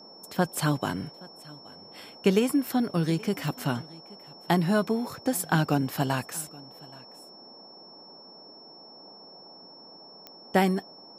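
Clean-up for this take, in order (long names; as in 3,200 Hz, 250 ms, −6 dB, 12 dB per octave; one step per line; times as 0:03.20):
click removal
notch filter 5,400 Hz, Q 30
noise reduction from a noise print 23 dB
echo removal 825 ms −22.5 dB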